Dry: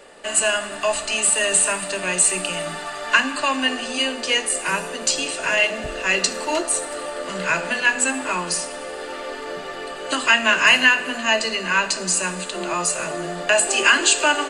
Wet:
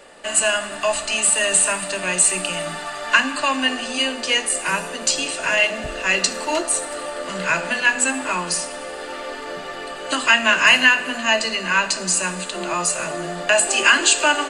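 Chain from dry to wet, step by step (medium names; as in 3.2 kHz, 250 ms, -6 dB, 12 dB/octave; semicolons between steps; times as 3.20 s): peaking EQ 420 Hz -4.5 dB 0.34 oct; trim +1 dB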